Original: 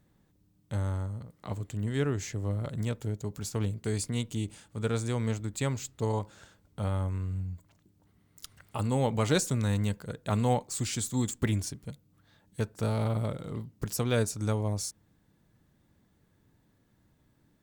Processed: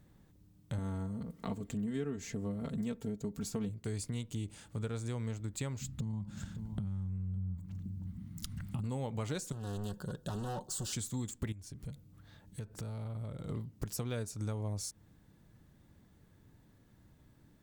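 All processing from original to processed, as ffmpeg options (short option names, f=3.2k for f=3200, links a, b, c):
-filter_complex "[0:a]asettb=1/sr,asplit=3[a][b][c];[a]atrim=end=0.784[d];[b]atrim=start=0.78:end=3.69,asetpts=PTS-STARTPTS,afade=t=in:d=0.004:c=qsin,afade=t=out:st=2.906:d=0.004:c=qsin,equalizer=f=230:w=0.66:g=6.5,aecho=1:1:4.4:0.73,atrim=end_sample=128331[e];[c]atrim=start=3.686[f];[d][e]acrossfade=d=0.004:c1=hsin:c2=qsin[g];[g][f]acrossfade=d=0.004:c1=qsin:c2=hsin,asettb=1/sr,asplit=3[h][i][j];[h]atrim=end=5.814[k];[i]atrim=start=5.81:end=8.84,asetpts=PTS-STARTPTS,afade=t=in:d=0.004:c=qsin,afade=t=out:st=3.026:d=0.004:c=qsin,lowshelf=f=300:t=q:w=3:g=12,acompressor=threshold=-28dB:ratio=12:attack=3.2:release=140:knee=1:detection=peak,aecho=1:1:560:0.158,atrim=end_sample=133623[l];[j]atrim=start=8.836[m];[k][l]acrossfade=d=0.004:c1=hsin:c2=qsin[n];[n][m]acrossfade=d=0.004:c1=qsin:c2=hsin,asettb=1/sr,asplit=3[o][p][q];[o]atrim=end=9.524[r];[p]atrim=start=9.52:end=10.93,asetpts=PTS-STARTPTS,afade=t=in:d=0.004:c=qsin,afade=t=out:st=1.406:d=0.004:c=qsin,volume=33.5dB,asoftclip=hard,volume=-33.5dB,asuperstop=centerf=2200:order=4:qfactor=1.9,aecho=1:1:5.4:0.39,atrim=end_sample=62181[s];[q]atrim=start=10.926[t];[r][s]acrossfade=d=0.004:c1=hsin:c2=qsin[u];[u][t]acrossfade=d=0.004:c1=qsin:c2=hsin,asettb=1/sr,asplit=3[v][w][x];[v]atrim=end=11.524[y];[w]atrim=start=11.52:end=13.49,asetpts=PTS-STARTPTS,afade=t=in:d=0.004:c=qsin,afade=t=out:st=1.966:d=0.004:c=qsin,lowshelf=f=130:g=5.5,acompressor=threshold=-44dB:ratio=4:attack=3.2:release=140:knee=1:detection=peak[z];[x]atrim=start=13.486[aa];[y][z]acrossfade=d=0.004:c1=hsin:c2=qsin[ab];[ab][aa]acrossfade=d=0.004:c1=qsin:c2=hsin,lowshelf=f=140:g=5,acompressor=threshold=-39dB:ratio=4,volume=2dB"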